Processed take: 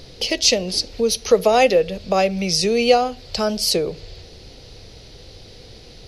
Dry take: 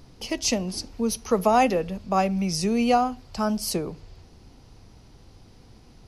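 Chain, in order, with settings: graphic EQ 250/500/1000/2000/4000 Hz -6/+11/-8/+4/+12 dB; in parallel at +2 dB: compressor, threshold -30 dBFS, peak gain reduction 18.5 dB

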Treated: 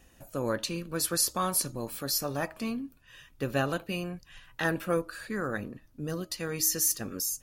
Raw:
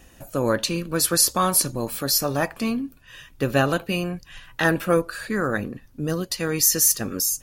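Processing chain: de-hum 316.5 Hz, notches 4; gain -8.5 dB

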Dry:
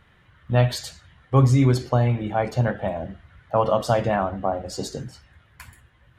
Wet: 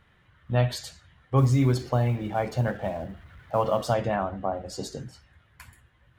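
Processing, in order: 1.38–3.94 G.711 law mismatch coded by mu; gain -4.5 dB

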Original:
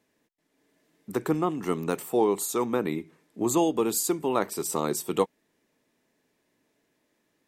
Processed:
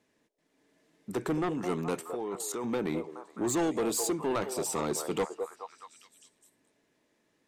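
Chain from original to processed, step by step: 2.01–2.64 level quantiser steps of 17 dB; LPF 10000 Hz 12 dB/oct; delay with a stepping band-pass 0.211 s, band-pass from 550 Hz, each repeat 0.7 oct, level -8.5 dB; soft clip -24 dBFS, distortion -9 dB

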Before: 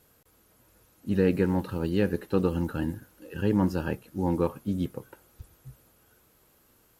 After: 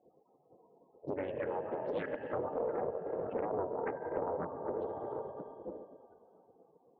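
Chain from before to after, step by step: Wiener smoothing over 25 samples; 2.37–4.55 sample leveller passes 2; bell 610 Hz +15 dB 0.21 oct; loudest bins only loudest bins 32; plate-style reverb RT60 2.6 s, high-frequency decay 1×, DRR 7 dB; spectral gate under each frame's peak -10 dB weak; compressor 8:1, threshold -44 dBFS, peak gain reduction 21 dB; speaker cabinet 160–8000 Hz, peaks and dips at 230 Hz -3 dB, 470 Hz +7 dB, 2800 Hz -7 dB; Doppler distortion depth 0.48 ms; gain +9 dB

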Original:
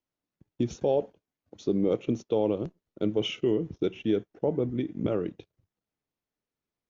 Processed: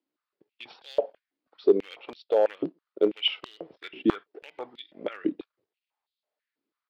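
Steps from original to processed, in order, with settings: downsampling 11025 Hz; hard clip -18 dBFS, distortion -22 dB; stepped high-pass 6.1 Hz 290–3700 Hz

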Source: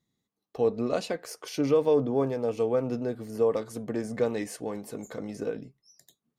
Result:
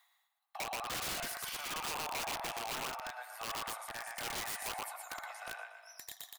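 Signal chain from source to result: on a send: feedback echo 0.12 s, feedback 33%, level -3 dB; on the sum: limiter -18.5 dBFS, peak gain reduction 8 dB; bell 5900 Hz -13.5 dB 1.1 oct; darkening echo 81 ms, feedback 47%, low-pass 4600 Hz, level -13 dB; reverse; upward compressor, threshold -37 dBFS; reverse; steep high-pass 710 Hz 72 dB/oct; wrapped overs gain 38 dB; gain +5 dB

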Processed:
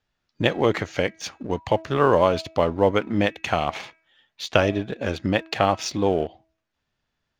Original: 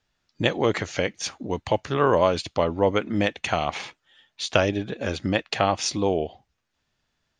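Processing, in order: LPF 4000 Hz 6 dB/oct; de-hum 323.5 Hz, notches 8; in parallel at -3.5 dB: crossover distortion -36 dBFS; on the sum: gain -2 dB

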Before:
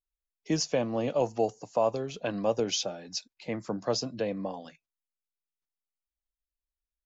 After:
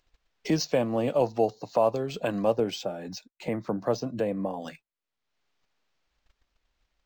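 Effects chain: upward compressor, threshold -28 dBFS; 2.56–4.62 high shelf 3300 Hz -11.5 dB; gate -51 dBFS, range -22 dB; decimation joined by straight lines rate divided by 4×; gain +3 dB

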